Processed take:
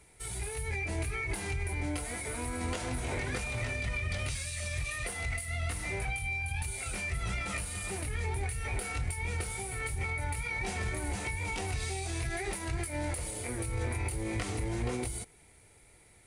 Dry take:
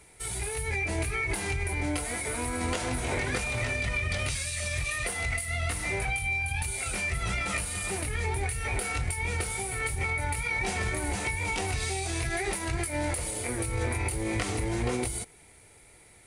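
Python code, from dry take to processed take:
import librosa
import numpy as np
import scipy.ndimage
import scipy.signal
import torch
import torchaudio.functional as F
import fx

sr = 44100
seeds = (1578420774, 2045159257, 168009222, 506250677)

p1 = fx.low_shelf(x, sr, hz=190.0, db=4.0)
p2 = 10.0 ** (-25.5 / 20.0) * np.tanh(p1 / 10.0 ** (-25.5 / 20.0))
p3 = p1 + F.gain(torch.from_numpy(p2), -10.5).numpy()
y = F.gain(torch.from_numpy(p3), -7.5).numpy()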